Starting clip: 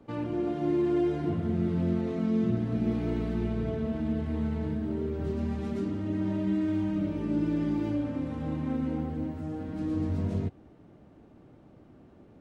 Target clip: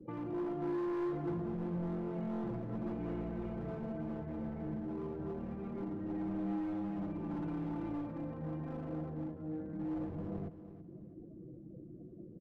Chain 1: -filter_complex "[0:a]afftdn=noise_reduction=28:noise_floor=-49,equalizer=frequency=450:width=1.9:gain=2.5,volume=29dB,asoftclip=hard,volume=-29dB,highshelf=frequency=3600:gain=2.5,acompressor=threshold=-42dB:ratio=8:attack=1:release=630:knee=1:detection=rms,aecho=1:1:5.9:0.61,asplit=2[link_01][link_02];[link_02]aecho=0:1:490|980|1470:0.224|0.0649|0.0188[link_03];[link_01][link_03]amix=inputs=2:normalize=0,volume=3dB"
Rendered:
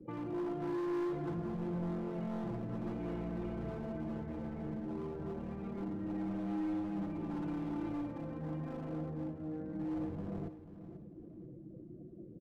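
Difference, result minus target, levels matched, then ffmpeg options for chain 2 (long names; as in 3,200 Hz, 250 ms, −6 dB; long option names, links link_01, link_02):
echo 161 ms late; 4,000 Hz band +4.0 dB
-filter_complex "[0:a]afftdn=noise_reduction=28:noise_floor=-49,equalizer=frequency=450:width=1.9:gain=2.5,volume=29dB,asoftclip=hard,volume=-29dB,highshelf=frequency=3600:gain=-6.5,acompressor=threshold=-42dB:ratio=8:attack=1:release=630:knee=1:detection=rms,aecho=1:1:5.9:0.61,asplit=2[link_01][link_02];[link_02]aecho=0:1:329|658|987:0.224|0.0649|0.0188[link_03];[link_01][link_03]amix=inputs=2:normalize=0,volume=3dB"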